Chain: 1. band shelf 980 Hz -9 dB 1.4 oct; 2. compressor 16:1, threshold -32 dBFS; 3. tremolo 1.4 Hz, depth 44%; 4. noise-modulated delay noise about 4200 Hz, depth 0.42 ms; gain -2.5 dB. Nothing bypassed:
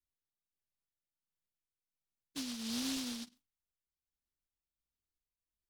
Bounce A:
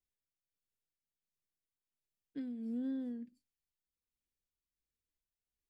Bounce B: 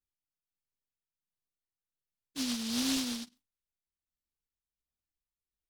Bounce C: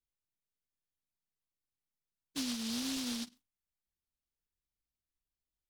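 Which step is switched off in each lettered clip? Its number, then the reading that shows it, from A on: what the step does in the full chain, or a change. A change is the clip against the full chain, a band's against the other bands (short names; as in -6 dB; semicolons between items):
4, loudness change -2.0 LU; 2, mean gain reduction 5.5 dB; 3, momentary loudness spread change -3 LU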